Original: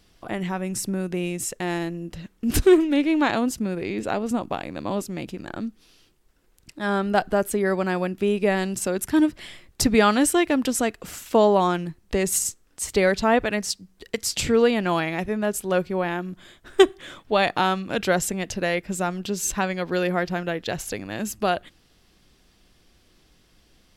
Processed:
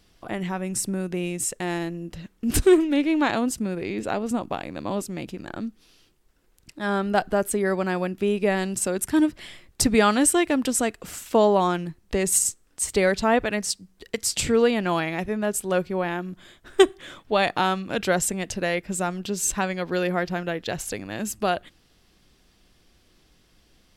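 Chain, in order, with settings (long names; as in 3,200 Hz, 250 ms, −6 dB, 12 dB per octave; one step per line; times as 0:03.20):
dynamic equaliser 8,500 Hz, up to +6 dB, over −46 dBFS, Q 3
level −1 dB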